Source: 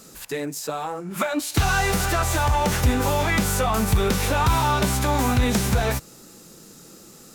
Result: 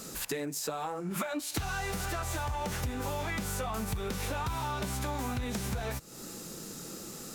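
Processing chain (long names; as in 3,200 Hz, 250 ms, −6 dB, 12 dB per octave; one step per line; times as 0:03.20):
downward compressor 8 to 1, threshold −35 dBFS, peak gain reduction 20 dB
level +3 dB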